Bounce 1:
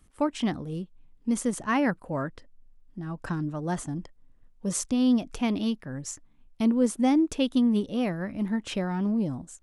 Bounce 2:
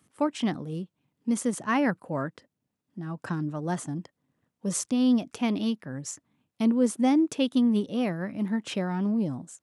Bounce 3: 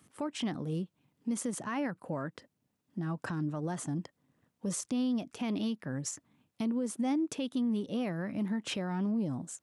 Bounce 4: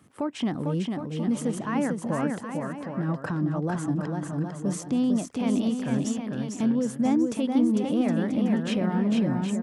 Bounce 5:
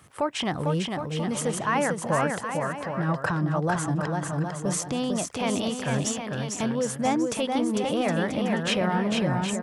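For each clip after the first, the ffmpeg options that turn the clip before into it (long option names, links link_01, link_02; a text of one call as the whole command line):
ffmpeg -i in.wav -af "highpass=frequency=110:width=0.5412,highpass=frequency=110:width=1.3066" out.wav
ffmpeg -i in.wav -af "acompressor=threshold=-35dB:ratio=2,alimiter=level_in=4dB:limit=-24dB:level=0:latency=1:release=61,volume=-4dB,volume=2.5dB" out.wav
ffmpeg -i in.wav -af "highshelf=frequency=2500:gain=-9,aecho=1:1:450|765|985.5|1140|1248:0.631|0.398|0.251|0.158|0.1,volume=7dB" out.wav
ffmpeg -i in.wav -af "equalizer=frequency=250:width_type=o:width=1.2:gain=-14.5,volume=8.5dB" out.wav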